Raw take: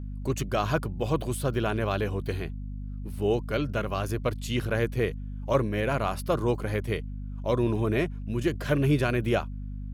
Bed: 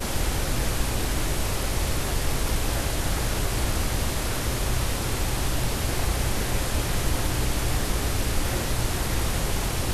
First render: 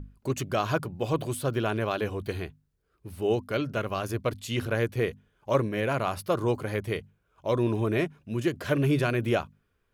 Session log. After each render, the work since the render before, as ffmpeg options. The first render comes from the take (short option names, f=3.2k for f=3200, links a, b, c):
-af "bandreject=f=50:t=h:w=6,bandreject=f=100:t=h:w=6,bandreject=f=150:t=h:w=6,bandreject=f=200:t=h:w=6,bandreject=f=250:t=h:w=6"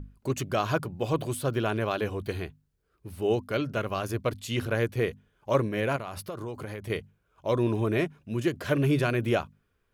-filter_complex "[0:a]asettb=1/sr,asplit=3[a][b][c];[a]atrim=end=5.964[d];[b]atrim=start=5.96:end=6.9,asetpts=PTS-STARTPTS,afade=t=in:d=0.004:c=qsin,afade=t=out:st=0.936:d=0.004:c=qsin,acompressor=threshold=-32dB:ratio=10:attack=3.2:release=140:knee=1:detection=peak[e];[c]atrim=start=6.896[f];[d][e]acrossfade=d=0.004:c1=hsin:c2=qsin[g];[g][f]acrossfade=d=0.004:c1=qsin:c2=hsin"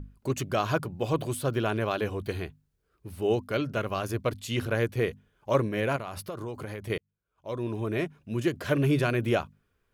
-filter_complex "[0:a]asplit=2[a][b];[a]atrim=end=6.98,asetpts=PTS-STARTPTS,afade=t=out:st=6.976:d=0.004:c=hsin[c];[b]atrim=start=6.98,asetpts=PTS-STARTPTS,afade=t=in:d=1.4[d];[c][d]concat=n=2:v=0:a=1"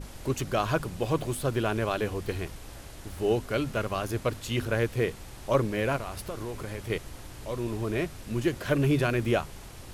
-filter_complex "[1:a]volume=-18.5dB[a];[0:a][a]amix=inputs=2:normalize=0"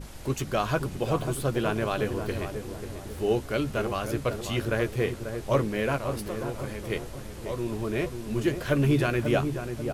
-filter_complex "[0:a]asplit=2[a][b];[b]adelay=14,volume=-11dB[c];[a][c]amix=inputs=2:normalize=0,asplit=2[d][e];[e]adelay=540,lowpass=f=950:p=1,volume=-6.5dB,asplit=2[f][g];[g]adelay=540,lowpass=f=950:p=1,volume=0.47,asplit=2[h][i];[i]adelay=540,lowpass=f=950:p=1,volume=0.47,asplit=2[j][k];[k]adelay=540,lowpass=f=950:p=1,volume=0.47,asplit=2[l][m];[m]adelay=540,lowpass=f=950:p=1,volume=0.47,asplit=2[n][o];[o]adelay=540,lowpass=f=950:p=1,volume=0.47[p];[f][h][j][l][n][p]amix=inputs=6:normalize=0[q];[d][q]amix=inputs=2:normalize=0"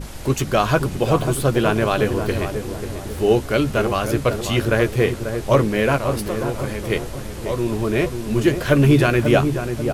-af "volume=9dB,alimiter=limit=-2dB:level=0:latency=1"